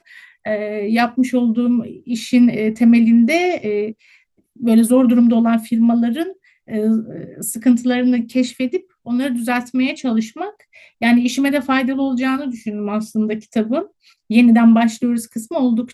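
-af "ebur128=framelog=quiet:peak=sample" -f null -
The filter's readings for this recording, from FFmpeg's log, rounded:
Integrated loudness:
  I:         -16.9 LUFS
  Threshold: -27.3 LUFS
Loudness range:
  LRA:         4.4 LU
  Threshold: -37.4 LUFS
  LRA low:   -19.6 LUFS
  LRA high:  -15.2 LUFS
Sample peak:
  Peak:       -2.2 dBFS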